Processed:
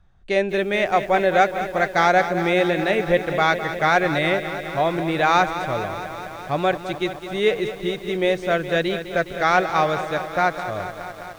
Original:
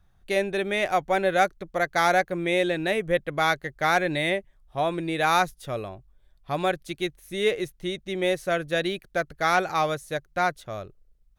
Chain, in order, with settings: brick-wall FIR low-pass 9.3 kHz; treble shelf 6.3 kHz -11.5 dB; bit-crushed delay 208 ms, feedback 80%, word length 8-bit, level -11 dB; trim +4.5 dB

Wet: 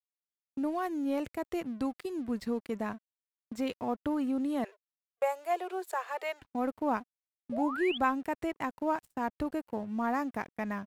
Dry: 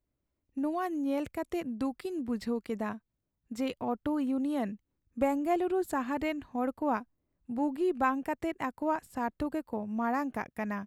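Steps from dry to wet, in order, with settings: crossover distortion -54.5 dBFS; 4.64–6.42 s: steep high-pass 400 Hz 72 dB/octave; gate -48 dBFS, range -32 dB; 7.52–7.98 s: painted sound rise 530–3500 Hz -37 dBFS

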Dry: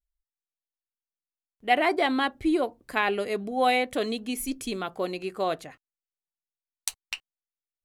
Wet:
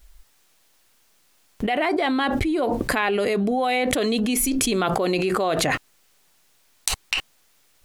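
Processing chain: treble shelf 11 kHz -4.5 dB; level flattener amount 100%; trim -4.5 dB

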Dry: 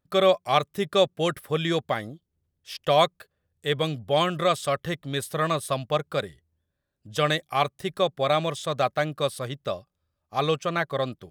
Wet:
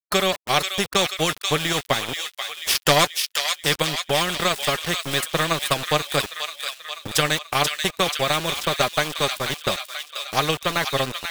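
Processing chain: transient shaper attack +9 dB, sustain -4 dB; 2.08–3.05 s: waveshaping leveller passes 2; flange 0.22 Hz, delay 4.6 ms, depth 3.2 ms, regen +42%; small samples zeroed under -39 dBFS; on a send: feedback echo behind a high-pass 485 ms, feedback 50%, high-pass 2.6 kHz, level -5 dB; on the sum: spectrum-flattening compressor 2:1

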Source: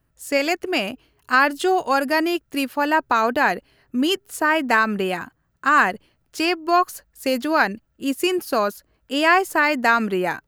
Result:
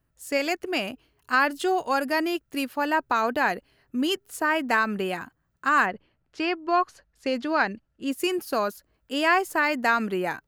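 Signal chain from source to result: 5.85–8.10 s: low-pass 2.8 kHz -> 6.3 kHz 12 dB/octave; trim -5 dB

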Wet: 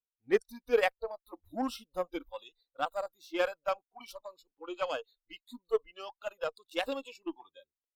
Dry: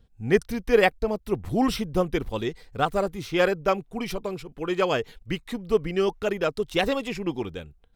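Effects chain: resonant low shelf 210 Hz -13 dB, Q 1.5; spectral noise reduction 28 dB; Chebyshev shaper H 7 -27 dB, 8 -37 dB, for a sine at -5.5 dBFS; trim -8.5 dB

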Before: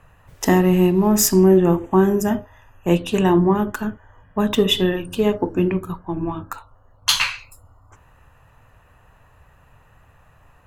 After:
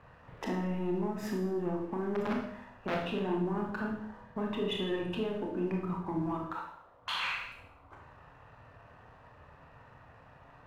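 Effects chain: 2.15–3.05 s: integer overflow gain 12 dB; distance through air 490 m; compression 5:1, threshold -28 dBFS, peak gain reduction 16.5 dB; peak limiter -25.5 dBFS, peak gain reduction 9 dB; high-pass 170 Hz 6 dB/octave; waveshaping leveller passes 1; 6.34–7.24 s: tone controls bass -9 dB, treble 0 dB; Schroeder reverb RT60 0.69 s, combs from 25 ms, DRR 0.5 dB; trim -2.5 dB

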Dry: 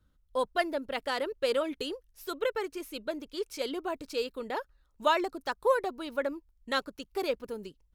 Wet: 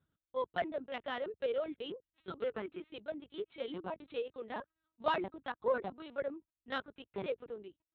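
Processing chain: LPC vocoder at 8 kHz pitch kept; in parallel at -10.5 dB: saturation -22 dBFS, distortion -13 dB; on the sum: high-pass 90 Hz 12 dB/octave; trim -8 dB

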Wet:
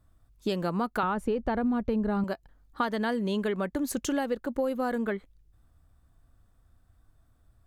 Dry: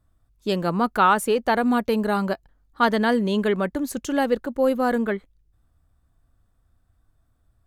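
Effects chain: 1.03–2.24 s: RIAA curve playback; compression 6:1, threshold -28 dBFS, peak gain reduction 15.5 dB; trim +2 dB

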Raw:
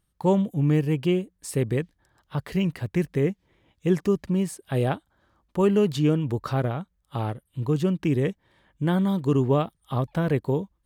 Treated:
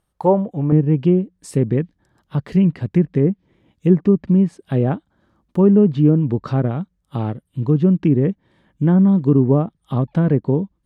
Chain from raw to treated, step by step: low-pass that closes with the level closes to 1.2 kHz, closed at -17.5 dBFS; peaking EQ 700 Hz +10.5 dB 1.9 oct, from 0.72 s 210 Hz

